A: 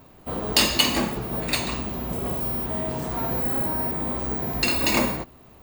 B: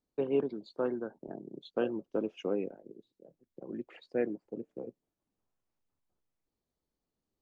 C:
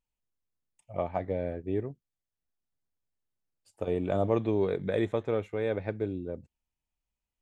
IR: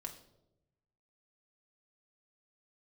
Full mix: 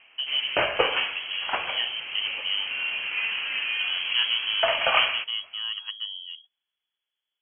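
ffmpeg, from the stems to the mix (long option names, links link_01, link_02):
-filter_complex "[0:a]highpass=520,volume=2dB[link_01];[1:a]equalizer=frequency=1700:width_type=o:width=0.87:gain=8,volume=0.5dB[link_02];[2:a]volume=-4.5dB[link_03];[link_01][link_02][link_03]amix=inputs=3:normalize=0,dynaudnorm=framelen=420:gausssize=7:maxgain=3dB,lowpass=frequency=2900:width_type=q:width=0.5098,lowpass=frequency=2900:width_type=q:width=0.6013,lowpass=frequency=2900:width_type=q:width=0.9,lowpass=frequency=2900:width_type=q:width=2.563,afreqshift=-3400"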